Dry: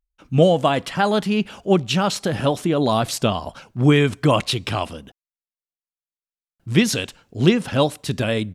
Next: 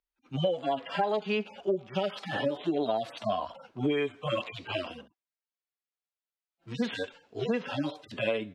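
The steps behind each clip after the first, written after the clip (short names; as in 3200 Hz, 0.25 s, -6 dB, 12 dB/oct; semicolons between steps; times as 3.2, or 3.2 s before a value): median-filter separation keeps harmonic; three-band isolator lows -22 dB, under 310 Hz, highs -17 dB, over 5000 Hz; compressor 10:1, threshold -29 dBFS, peak gain reduction 14 dB; gain +4 dB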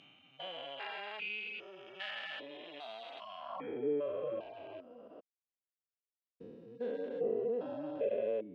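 stepped spectrum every 0.4 s; reverb removal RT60 1.7 s; band-pass sweep 2300 Hz -> 470 Hz, 3.35–3.88; gain +8.5 dB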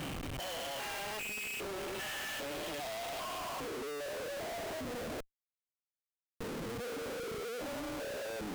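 compressor, threshold -40 dBFS, peak gain reduction 10.5 dB; Schmitt trigger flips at -59.5 dBFS; gain +6 dB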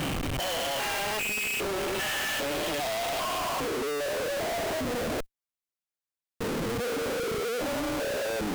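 sample leveller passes 3; gain +5.5 dB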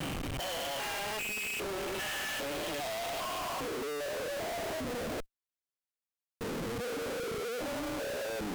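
vibrato 0.31 Hz 11 cents; gain -6 dB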